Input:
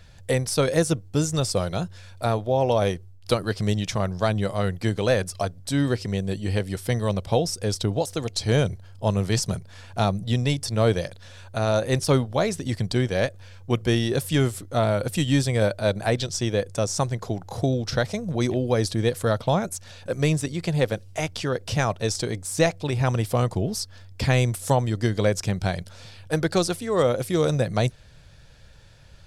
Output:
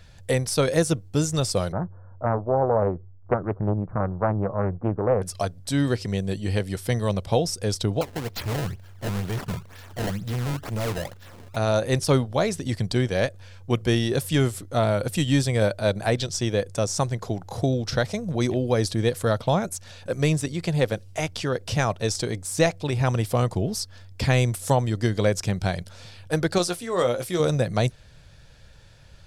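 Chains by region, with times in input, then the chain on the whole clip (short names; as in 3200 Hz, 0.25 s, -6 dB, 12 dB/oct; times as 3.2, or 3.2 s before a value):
1.72–5.22 steep low-pass 1300 Hz 48 dB/oct + Doppler distortion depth 0.64 ms
8.01–11.56 CVSD 32 kbps + decimation with a swept rate 22×, swing 160% 2.1 Hz + hard clip -24.5 dBFS
26.58–27.4 low shelf 340 Hz -8 dB + doubler 17 ms -8 dB
whole clip: dry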